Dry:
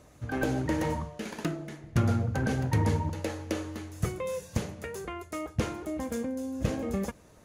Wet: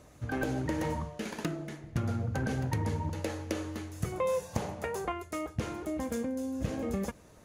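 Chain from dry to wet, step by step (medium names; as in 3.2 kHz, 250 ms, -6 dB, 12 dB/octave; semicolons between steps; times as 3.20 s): compression 6:1, threshold -28 dBFS, peak gain reduction 8 dB; 4.12–5.12 s: peaking EQ 820 Hz +11.5 dB 1 oct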